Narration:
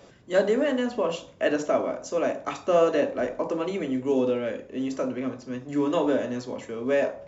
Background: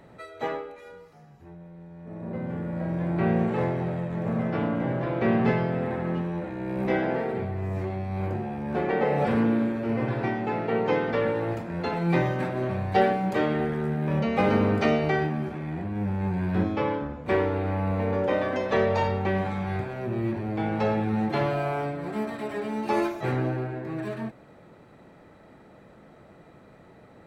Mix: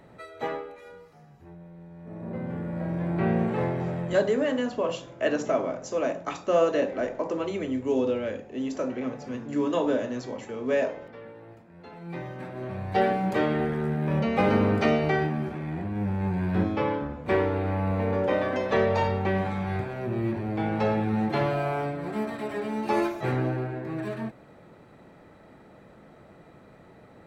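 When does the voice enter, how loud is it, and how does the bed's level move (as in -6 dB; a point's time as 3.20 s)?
3.80 s, -1.5 dB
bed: 4.10 s -1 dB
4.39 s -19 dB
11.73 s -19 dB
13.17 s 0 dB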